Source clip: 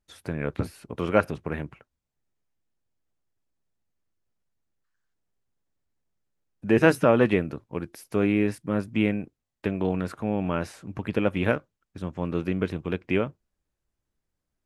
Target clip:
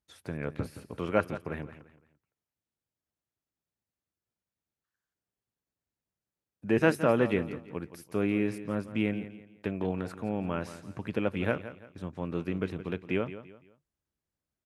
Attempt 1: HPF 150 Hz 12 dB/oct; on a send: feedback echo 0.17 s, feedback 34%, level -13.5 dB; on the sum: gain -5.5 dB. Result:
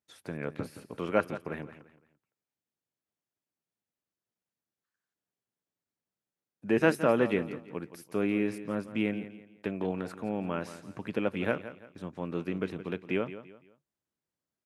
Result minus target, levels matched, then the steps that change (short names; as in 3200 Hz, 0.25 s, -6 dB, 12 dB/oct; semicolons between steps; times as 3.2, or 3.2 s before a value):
125 Hz band -3.0 dB
change: HPF 57 Hz 12 dB/oct